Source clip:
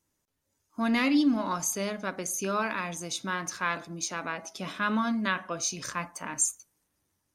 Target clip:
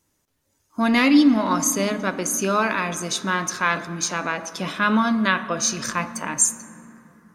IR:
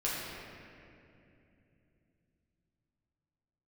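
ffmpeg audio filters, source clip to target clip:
-filter_complex "[0:a]asplit=2[a][b];[1:a]atrim=start_sample=2205,asetrate=33075,aresample=44100,highshelf=f=12k:g=-8.5[c];[b][c]afir=irnorm=-1:irlink=0,volume=-20dB[d];[a][d]amix=inputs=2:normalize=0,volume=7.5dB"

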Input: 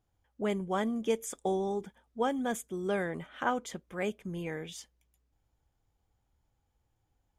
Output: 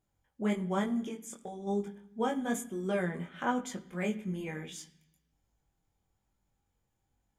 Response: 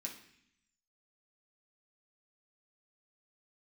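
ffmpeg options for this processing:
-filter_complex "[0:a]bass=f=250:g=5,treble=f=4k:g=0,asplit=3[a][b][c];[a]afade=t=out:st=1.07:d=0.02[d];[b]acompressor=threshold=-39dB:ratio=4,afade=t=in:st=1.07:d=0.02,afade=t=out:st=1.66:d=0.02[e];[c]afade=t=in:st=1.66:d=0.02[f];[d][e][f]amix=inputs=3:normalize=0,flanger=delay=20:depth=3.1:speed=1.1,asplit=2[g][h];[1:a]atrim=start_sample=2205,asetrate=39249,aresample=44100[i];[h][i]afir=irnorm=-1:irlink=0,volume=-4.5dB[j];[g][j]amix=inputs=2:normalize=0"

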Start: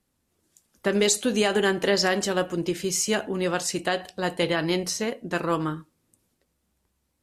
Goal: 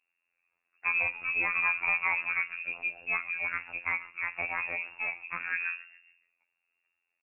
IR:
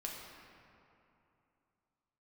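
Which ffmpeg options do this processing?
-filter_complex "[0:a]asplit=5[a][b][c][d][e];[b]adelay=139,afreqshift=-120,volume=-18dB[f];[c]adelay=278,afreqshift=-240,volume=-25.1dB[g];[d]adelay=417,afreqshift=-360,volume=-32.3dB[h];[e]adelay=556,afreqshift=-480,volume=-39.4dB[i];[a][f][g][h][i]amix=inputs=5:normalize=0,lowpass=f=2.4k:t=q:w=0.5098,lowpass=f=2.4k:t=q:w=0.6013,lowpass=f=2.4k:t=q:w=0.9,lowpass=f=2.4k:t=q:w=2.563,afreqshift=-2800,afftfilt=real='hypot(re,im)*cos(PI*b)':imag='0':win_size=2048:overlap=0.75,volume=-3dB"

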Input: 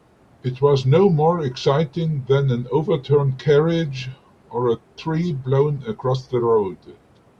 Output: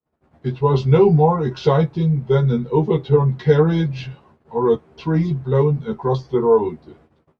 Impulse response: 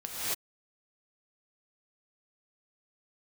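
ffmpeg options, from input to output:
-filter_complex "[0:a]lowpass=f=2.1k:p=1,agate=range=-37dB:threshold=-51dB:ratio=16:detection=peak,asplit=2[a][b];[b]adelay=13,volume=-2dB[c];[a][c]amix=inputs=2:normalize=0"

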